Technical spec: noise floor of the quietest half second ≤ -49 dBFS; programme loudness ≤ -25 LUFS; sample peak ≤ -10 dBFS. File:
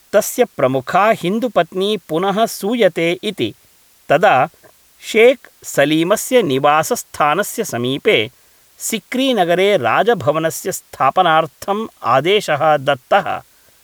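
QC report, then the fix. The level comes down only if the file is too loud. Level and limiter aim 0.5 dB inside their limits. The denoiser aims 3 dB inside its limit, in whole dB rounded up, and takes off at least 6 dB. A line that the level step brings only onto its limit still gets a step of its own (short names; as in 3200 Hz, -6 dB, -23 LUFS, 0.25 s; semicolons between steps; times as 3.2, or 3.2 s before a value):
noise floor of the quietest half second -51 dBFS: OK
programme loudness -16.0 LUFS: fail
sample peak -1.5 dBFS: fail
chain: gain -9.5 dB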